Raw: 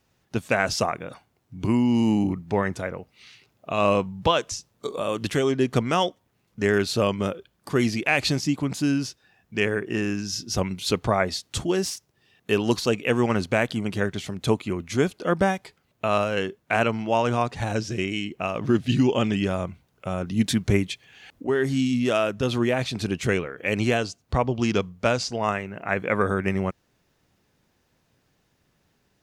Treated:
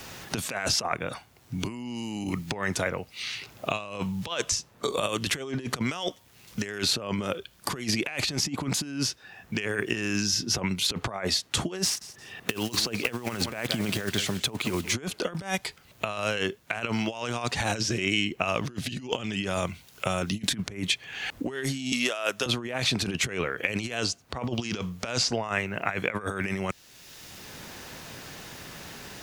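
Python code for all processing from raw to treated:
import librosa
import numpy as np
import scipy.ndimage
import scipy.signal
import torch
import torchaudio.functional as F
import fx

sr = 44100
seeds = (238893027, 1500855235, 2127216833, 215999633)

y = fx.chain(x, sr, fx.block_float(bits=5),
    fx.echo_feedback(ms=171, feedback_pct=22, wet_db=-20), at=(11.84, 14.94))
y = fx.chain(y, sr, fx.highpass(hz=480.0, slope=12),
    fx.high_shelf(hz=4600.0, db=5.0), at=(21.92, 22.46))
y = fx.over_compress(y, sr, threshold_db=-28.0, ratio=-0.5)
y = fx.tilt_shelf(y, sr, db=-3.5, hz=740.0)
y = fx.band_squash(y, sr, depth_pct=70)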